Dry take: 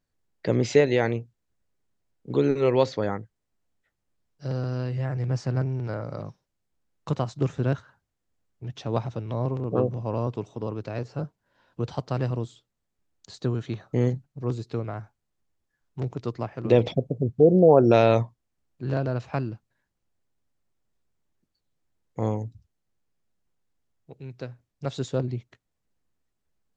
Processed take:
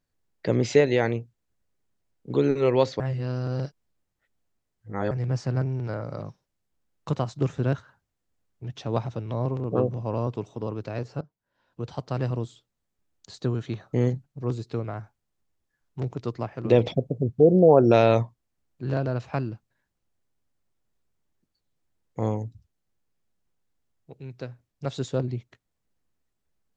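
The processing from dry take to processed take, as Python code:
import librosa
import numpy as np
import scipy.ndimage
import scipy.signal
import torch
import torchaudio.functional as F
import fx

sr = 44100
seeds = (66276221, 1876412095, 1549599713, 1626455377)

y = fx.edit(x, sr, fx.reverse_span(start_s=3.0, length_s=2.11),
    fx.fade_in_from(start_s=11.21, length_s=1.09, floor_db=-19.5), tone=tone)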